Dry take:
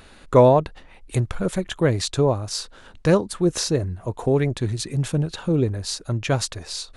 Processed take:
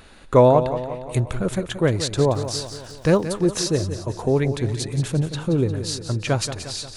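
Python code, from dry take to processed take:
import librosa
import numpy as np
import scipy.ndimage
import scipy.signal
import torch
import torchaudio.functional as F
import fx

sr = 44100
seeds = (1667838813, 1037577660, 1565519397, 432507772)

y = fx.dmg_crackle(x, sr, seeds[0], per_s=160.0, level_db=-39.0, at=(2.29, 3.24), fade=0.02)
y = fx.echo_feedback(y, sr, ms=177, feedback_pct=56, wet_db=-11)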